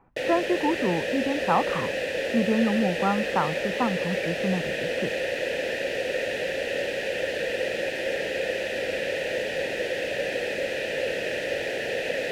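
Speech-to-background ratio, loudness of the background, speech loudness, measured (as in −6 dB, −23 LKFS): 0.0 dB, −28.0 LKFS, −28.0 LKFS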